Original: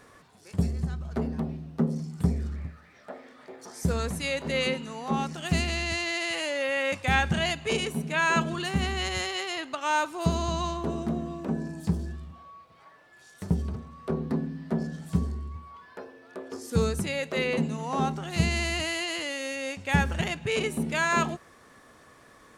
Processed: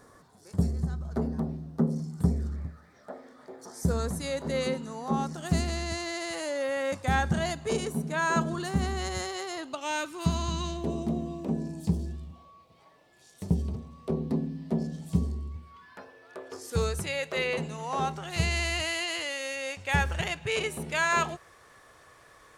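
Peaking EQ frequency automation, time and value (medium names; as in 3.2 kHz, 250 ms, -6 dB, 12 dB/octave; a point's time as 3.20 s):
peaking EQ -12.5 dB 0.88 oct
9.59 s 2.6 kHz
10.35 s 440 Hz
10.92 s 1.5 kHz
15.48 s 1.5 kHz
16.22 s 230 Hz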